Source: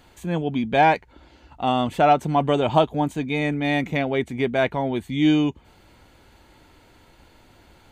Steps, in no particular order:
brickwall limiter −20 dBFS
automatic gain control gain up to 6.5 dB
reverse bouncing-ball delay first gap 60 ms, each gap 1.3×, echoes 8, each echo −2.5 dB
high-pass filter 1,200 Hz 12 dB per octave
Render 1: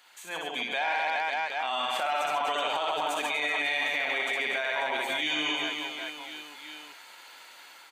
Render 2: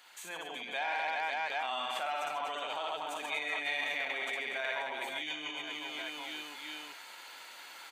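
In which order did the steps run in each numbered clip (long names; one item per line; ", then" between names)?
high-pass filter, then automatic gain control, then reverse bouncing-ball delay, then brickwall limiter
reverse bouncing-ball delay, then automatic gain control, then brickwall limiter, then high-pass filter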